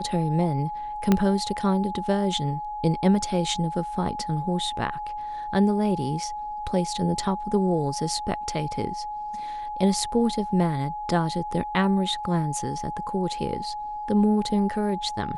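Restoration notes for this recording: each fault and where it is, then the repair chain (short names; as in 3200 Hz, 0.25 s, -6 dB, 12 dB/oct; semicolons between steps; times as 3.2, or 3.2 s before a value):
tone 840 Hz -30 dBFS
1.12 pop -7 dBFS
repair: de-click; notch 840 Hz, Q 30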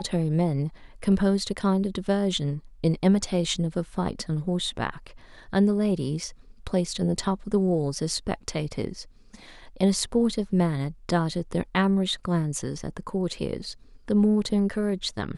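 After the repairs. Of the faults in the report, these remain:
1.12 pop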